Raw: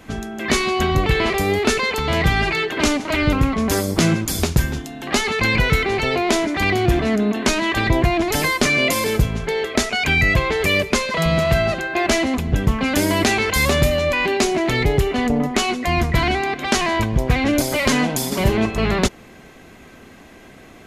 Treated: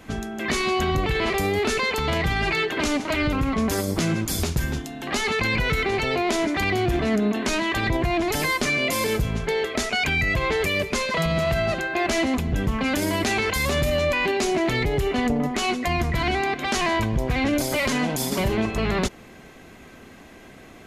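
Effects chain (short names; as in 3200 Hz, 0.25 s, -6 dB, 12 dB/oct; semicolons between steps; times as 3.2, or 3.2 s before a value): limiter -12.5 dBFS, peak gain reduction 6.5 dB; gain -2 dB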